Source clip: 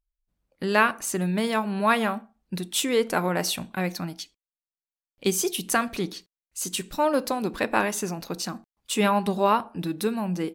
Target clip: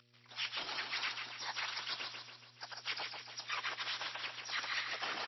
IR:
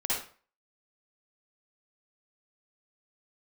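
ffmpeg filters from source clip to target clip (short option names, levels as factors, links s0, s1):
-filter_complex "[0:a]aeval=exprs='if(lt(val(0),0),0.251*val(0),val(0))':c=same,tiltshelf=f=970:g=-3.5,asplit=2[s0][s1];[s1]acompressor=mode=upward:threshold=0.0398:ratio=2.5,volume=1.19[s2];[s0][s2]amix=inputs=2:normalize=0,highpass=700,asplit=3[s3][s4][s5];[s4]asetrate=37084,aresample=44100,atempo=1.18921,volume=0.141[s6];[s5]asetrate=88200,aresample=44100,atempo=0.5,volume=0.562[s7];[s3][s6][s7]amix=inputs=3:normalize=0,areverse,acompressor=threshold=0.0224:ratio=10,areverse,afftfilt=real='hypot(re,im)*cos(2*PI*random(0))':imag='hypot(re,im)*sin(2*PI*random(1))':win_size=512:overlap=0.75,aeval=exprs='val(0)+0.000178*(sin(2*PI*60*n/s)+sin(2*PI*2*60*n/s)/2+sin(2*PI*3*60*n/s)/3+sin(2*PI*4*60*n/s)/4+sin(2*PI*5*60*n/s)/5)':c=same,highshelf=f=5300:g=-6,asetrate=88200,aresample=44100,aecho=1:1:141|282|423|564|705|846|987:0.562|0.298|0.158|0.0837|0.0444|0.0235|0.0125,volume=1.58" -ar 16000 -c:a libmp3lame -b:a 24k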